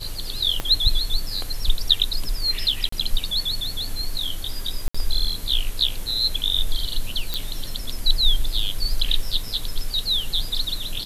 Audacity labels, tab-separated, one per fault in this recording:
0.600000	0.600000	click −10 dBFS
2.890000	2.920000	drop-out 34 ms
4.880000	4.950000	drop-out 65 ms
7.340000	7.340000	click −9 dBFS

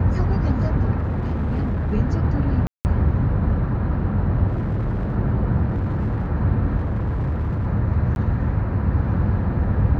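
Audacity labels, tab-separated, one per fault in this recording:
0.980000	1.940000	clipping −19 dBFS
2.670000	2.850000	drop-out 179 ms
4.470000	5.170000	clipping −19.5 dBFS
5.680000	6.270000	clipping −19 dBFS
6.780000	7.670000	clipping −19.5 dBFS
8.150000	8.160000	drop-out 11 ms

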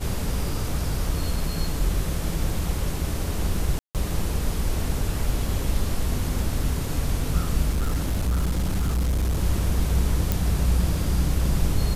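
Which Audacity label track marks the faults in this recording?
3.790000	3.950000	drop-out 158 ms
7.700000	9.410000	clipping −19.5 dBFS
10.320000	10.320000	click

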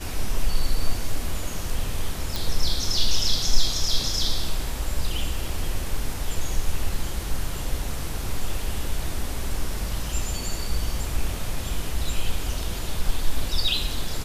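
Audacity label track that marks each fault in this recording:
2.360000	2.360000	click

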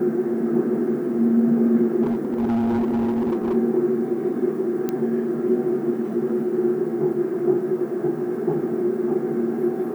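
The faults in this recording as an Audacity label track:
2.020000	3.550000	clipping −18.5 dBFS
4.890000	4.890000	click −12 dBFS

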